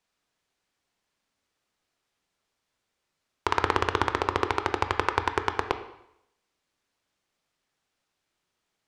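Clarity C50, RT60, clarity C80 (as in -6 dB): 10.5 dB, 0.80 s, 13.5 dB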